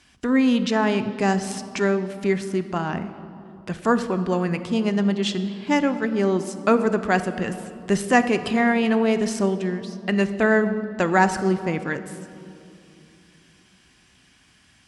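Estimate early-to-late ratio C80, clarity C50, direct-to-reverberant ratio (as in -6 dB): 12.5 dB, 11.5 dB, 10.0 dB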